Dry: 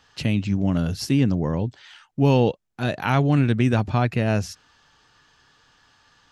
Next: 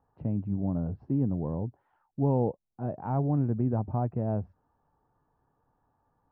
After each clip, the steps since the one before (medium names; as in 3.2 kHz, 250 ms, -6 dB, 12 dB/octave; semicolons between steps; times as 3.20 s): Chebyshev low-pass 880 Hz, order 3; trim -7.5 dB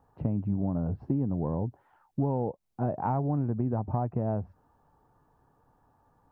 dynamic bell 960 Hz, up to +4 dB, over -47 dBFS, Q 1.2; compression, threshold -32 dBFS, peak gain reduction 11.5 dB; trim +7 dB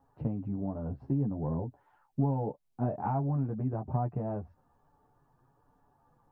chorus voices 6, 0.34 Hz, delay 11 ms, depth 4.2 ms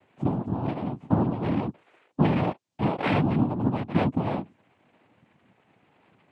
noise-vocoded speech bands 4; trim +7 dB